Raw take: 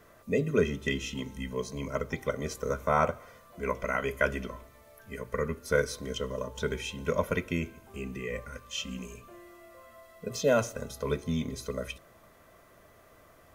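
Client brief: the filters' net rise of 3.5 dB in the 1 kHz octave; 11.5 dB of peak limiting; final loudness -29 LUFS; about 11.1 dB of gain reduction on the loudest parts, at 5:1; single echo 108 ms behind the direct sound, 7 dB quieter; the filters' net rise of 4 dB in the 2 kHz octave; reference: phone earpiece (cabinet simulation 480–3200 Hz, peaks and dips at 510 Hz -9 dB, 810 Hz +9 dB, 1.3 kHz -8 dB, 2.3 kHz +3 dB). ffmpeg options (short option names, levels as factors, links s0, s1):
-af "equalizer=f=1000:t=o:g=3.5,equalizer=f=2000:t=o:g=5,acompressor=threshold=0.0316:ratio=5,alimiter=level_in=1.12:limit=0.0631:level=0:latency=1,volume=0.891,highpass=480,equalizer=f=510:t=q:w=4:g=-9,equalizer=f=810:t=q:w=4:g=9,equalizer=f=1300:t=q:w=4:g=-8,equalizer=f=2300:t=q:w=4:g=3,lowpass=f=3200:w=0.5412,lowpass=f=3200:w=1.3066,aecho=1:1:108:0.447,volume=4.22"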